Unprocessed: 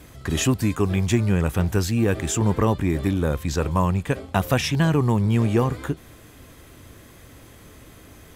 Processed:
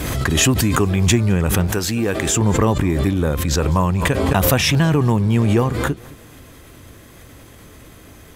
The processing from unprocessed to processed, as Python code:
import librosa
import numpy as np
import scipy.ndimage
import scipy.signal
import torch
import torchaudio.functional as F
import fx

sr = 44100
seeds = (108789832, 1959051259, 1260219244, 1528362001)

y = fx.low_shelf(x, sr, hz=170.0, db=-10.5, at=(1.67, 2.29))
y = fx.echo_feedback(y, sr, ms=211, feedback_pct=41, wet_db=-21.0)
y = fx.pre_swell(y, sr, db_per_s=25.0)
y = y * librosa.db_to_amplitude(3.0)